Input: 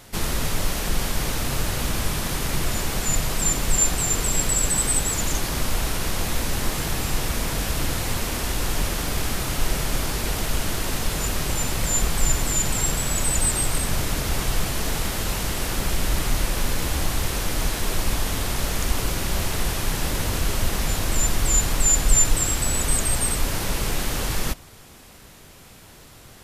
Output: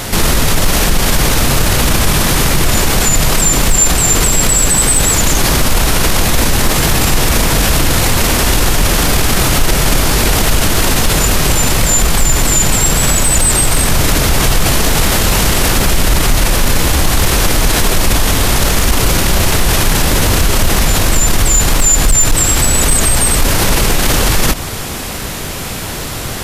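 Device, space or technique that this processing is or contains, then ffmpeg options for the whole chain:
loud club master: -af "acompressor=threshold=0.0708:ratio=2,asoftclip=type=hard:threshold=0.158,alimiter=level_in=21.1:limit=0.891:release=50:level=0:latency=1,volume=0.841"

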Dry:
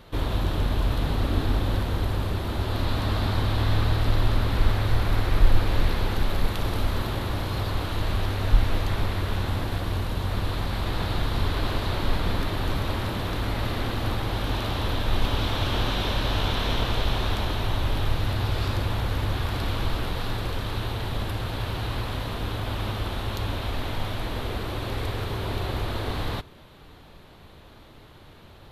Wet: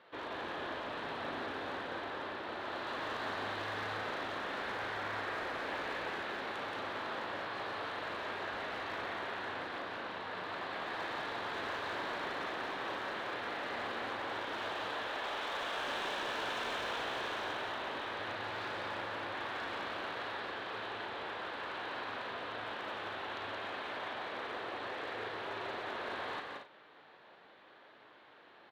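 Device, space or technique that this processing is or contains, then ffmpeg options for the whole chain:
megaphone: -filter_complex "[0:a]asettb=1/sr,asplit=3[s0][s1][s2];[s0]atrim=end=14.934[s3];[s1]atrim=start=14.93:end=15.83,asetpts=PTS-STARTPTS,afade=t=in:d=0.004:c=qsin,afade=t=out:st=0.896:d=0.004:c=qsin,bass=f=250:g=-12,treble=f=4000:g=-1[s4];[s2]atrim=start=15.826[s5];[s3][s4]acrossfade=d=0.004:c1=hsin:c2=qsin[s6];[s6][s5]acrossfade=d=0.004:c1=qsin:c2=hsin,highpass=460,lowpass=2900,equalizer=f=1700:t=o:w=0.37:g=5,asoftclip=type=hard:threshold=0.0376,asplit=2[s7][s8];[s8]adelay=38,volume=0.376[s9];[s7][s9]amix=inputs=2:normalize=0,aecho=1:1:174.9|230.3:0.631|0.355,volume=0.422"

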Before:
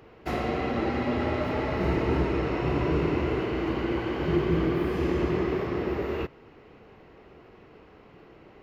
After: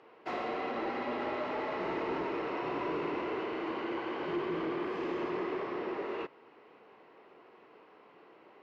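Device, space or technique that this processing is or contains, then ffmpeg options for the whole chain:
intercom: -af "highpass=340,lowpass=4600,equalizer=f=1000:t=o:w=0.4:g=5,asoftclip=type=tanh:threshold=0.0841,volume=0.596"

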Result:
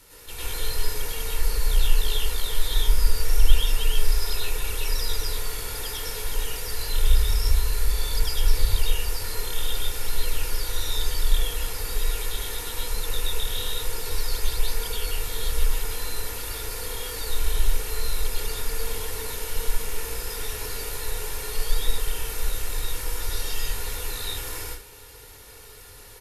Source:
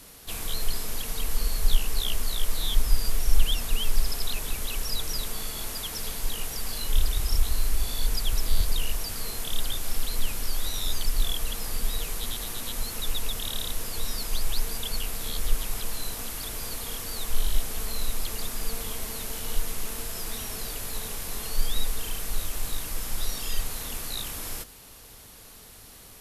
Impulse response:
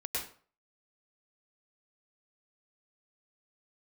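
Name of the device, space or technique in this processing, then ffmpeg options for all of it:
microphone above a desk: -filter_complex "[0:a]aecho=1:1:2.2:0.53[s0];[1:a]atrim=start_sample=2205[s1];[s0][s1]afir=irnorm=-1:irlink=0,equalizer=f=1700:t=o:w=1.5:g=3,volume=0.75"

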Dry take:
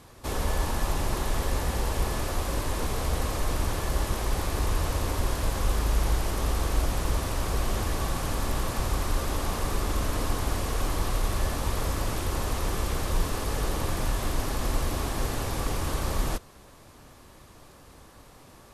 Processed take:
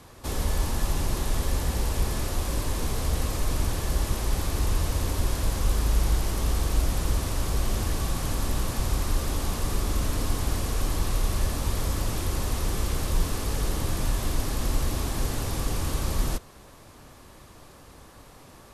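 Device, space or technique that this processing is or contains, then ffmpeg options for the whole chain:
one-band saturation: -filter_complex "[0:a]acrossover=split=330|3300[s0][s1][s2];[s1]asoftclip=type=tanh:threshold=0.0126[s3];[s0][s3][s2]amix=inputs=3:normalize=0,volume=1.26"

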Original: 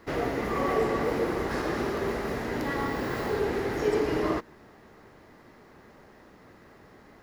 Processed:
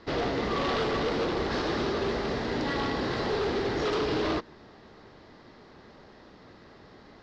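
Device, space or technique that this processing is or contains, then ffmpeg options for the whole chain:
synthesiser wavefolder: -af "aeval=exprs='0.0631*(abs(mod(val(0)/0.0631+3,4)-2)-1)':c=same,lowpass=f=4900:w=0.5412,lowpass=f=4900:w=1.3066,highshelf=f=3000:t=q:w=1.5:g=6,volume=1.19"

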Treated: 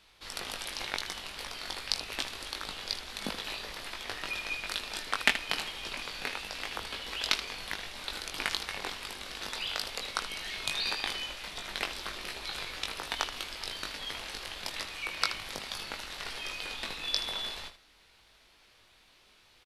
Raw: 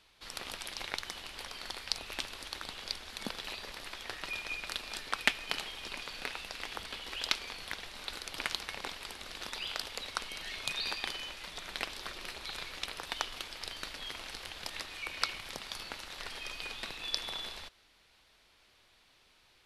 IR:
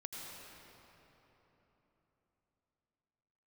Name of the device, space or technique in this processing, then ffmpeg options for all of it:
slapback doubling: -filter_complex "[0:a]asplit=3[s0][s1][s2];[s1]adelay=20,volume=0.596[s3];[s2]adelay=78,volume=0.282[s4];[s0][s3][s4]amix=inputs=3:normalize=0,volume=1.26"

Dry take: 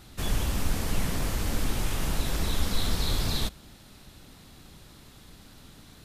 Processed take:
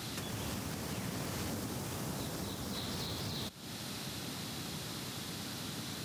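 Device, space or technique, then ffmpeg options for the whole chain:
broadcast voice chain: -filter_complex "[0:a]highpass=f=100:w=0.5412,highpass=f=100:w=1.3066,deesser=0.8,acompressor=threshold=0.00562:ratio=5,equalizer=f=5400:t=o:w=0.86:g=3.5,alimiter=level_in=5.31:limit=0.0631:level=0:latency=1:release=460,volume=0.188,asettb=1/sr,asplit=3[s0][s1][s2];[s0]atrim=end=1.504[s3];[s1]atrim=start=1.5:end=2.75,asetpts=PTS-STARTPTS,afade=t=in:d=0.004:c=qsin,afade=t=out:st=1.246:d=0.004:c=qsin,equalizer=f=2600:t=o:w=1.6:g=-4.5[s4];[s2]atrim=start=2.746[s5];[s3][s4]acrossfade=d=0.004:c1=hsin:c2=qsin[s6];[s6][s5]acrossfade=d=0.004:c1=qsin:c2=hsin,volume=3.16"

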